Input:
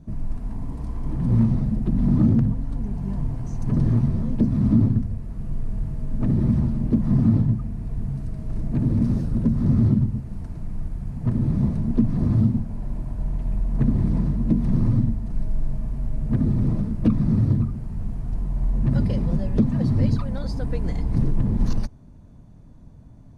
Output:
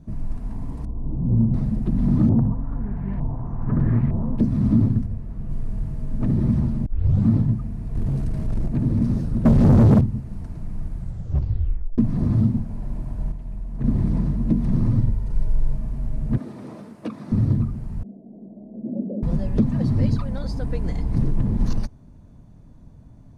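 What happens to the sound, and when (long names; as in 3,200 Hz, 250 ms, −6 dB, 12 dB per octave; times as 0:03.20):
0:00.85–0:01.54: Gaussian smoothing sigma 10 samples
0:02.29–0:04.38: auto-filter low-pass saw up 1.1 Hz 790–2,300 Hz
0:05.06–0:05.50: high-shelf EQ 3,400 Hz −8.5 dB
0:06.86: tape start 0.41 s
0:07.95–0:08.68: leveller curve on the samples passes 2
0:09.45–0:10.01: leveller curve on the samples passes 3
0:10.95: tape stop 1.03 s
0:13.32–0:13.84: clip gain −7.5 dB
0:14.98–0:15.75: comb filter 2.1 ms, depth 58%
0:16.38–0:17.32: high-pass filter 450 Hz
0:18.03–0:19.23: elliptic band-pass filter 200–640 Hz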